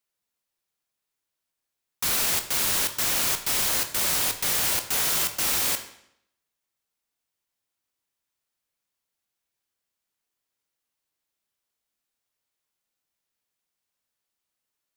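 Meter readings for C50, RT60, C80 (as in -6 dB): 11.0 dB, 0.75 s, 13.5 dB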